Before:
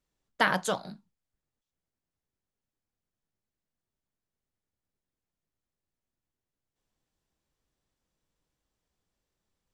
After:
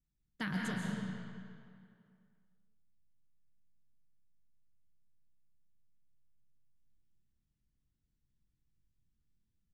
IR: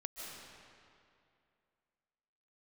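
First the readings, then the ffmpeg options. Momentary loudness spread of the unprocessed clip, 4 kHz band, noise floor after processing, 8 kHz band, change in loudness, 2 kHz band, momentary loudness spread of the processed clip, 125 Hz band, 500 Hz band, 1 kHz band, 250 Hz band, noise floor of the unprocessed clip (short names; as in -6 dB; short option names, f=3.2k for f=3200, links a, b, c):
13 LU, -11.5 dB, -83 dBFS, -12.0 dB, -11.0 dB, -11.5 dB, 17 LU, +2.5 dB, -16.0 dB, -16.5 dB, +1.0 dB, under -85 dBFS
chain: -filter_complex "[0:a]firequalizer=gain_entry='entry(140,0);entry(560,-26);entry(1700,-16)':delay=0.05:min_phase=1[a];[1:a]atrim=start_sample=2205,asetrate=48510,aresample=44100[b];[a][b]afir=irnorm=-1:irlink=0,volume=7dB"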